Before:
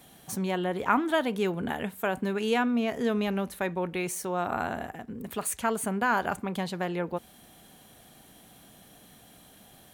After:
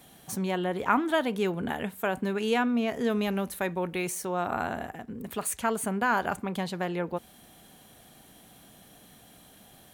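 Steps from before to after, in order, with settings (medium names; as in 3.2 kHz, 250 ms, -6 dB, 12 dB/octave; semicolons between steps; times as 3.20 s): 3.10–4.10 s: treble shelf 7.3 kHz +7 dB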